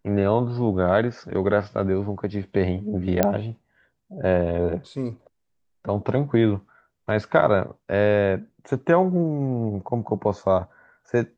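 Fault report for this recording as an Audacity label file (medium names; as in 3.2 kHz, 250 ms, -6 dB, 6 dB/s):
3.230000	3.230000	pop -5 dBFS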